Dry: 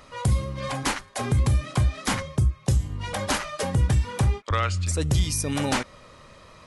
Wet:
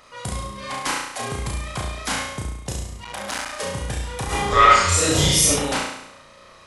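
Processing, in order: low shelf 340 Hz -10 dB; flutter echo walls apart 5.9 m, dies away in 0.8 s; 3.04–3.59 core saturation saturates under 2300 Hz; 4.26–5.5 reverb throw, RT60 0.82 s, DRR -11.5 dB

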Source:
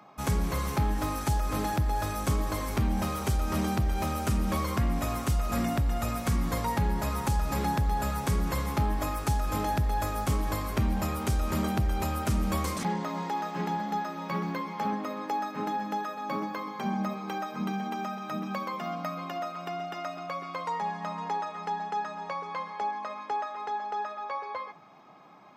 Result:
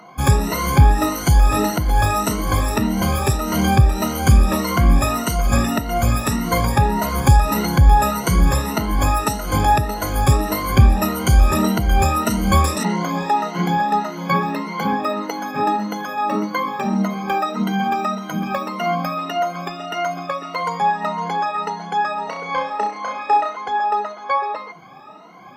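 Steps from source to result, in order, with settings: moving spectral ripple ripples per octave 1.9, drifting +1.7 Hz, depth 22 dB; 22.24–23.57 flutter echo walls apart 5.6 m, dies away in 0.39 s; gain +7 dB

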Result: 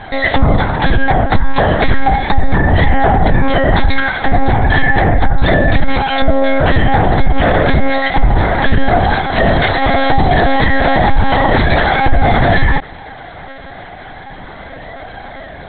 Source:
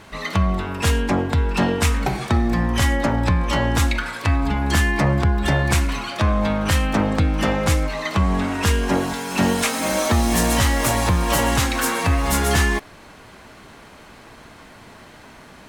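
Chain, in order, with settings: bell 470 Hz +5.5 dB 1.4 oct; notch 450 Hz, Q 13; flange 0.33 Hz, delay 1.2 ms, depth 2 ms, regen +31%; fixed phaser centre 1800 Hz, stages 8; monotone LPC vocoder at 8 kHz 270 Hz; maximiser +19.5 dB; gain -1 dB

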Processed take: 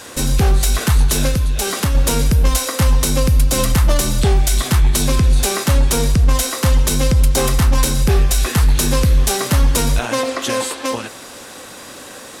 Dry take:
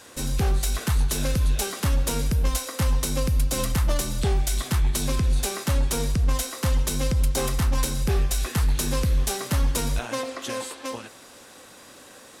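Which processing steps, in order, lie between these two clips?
in parallel at +1 dB: limiter -22.5 dBFS, peak gain reduction 8 dB; 1.28–1.95 on the sum: compressor, threshold -19 dBFS, peak gain reduction 5.5 dB; gain +5.5 dB

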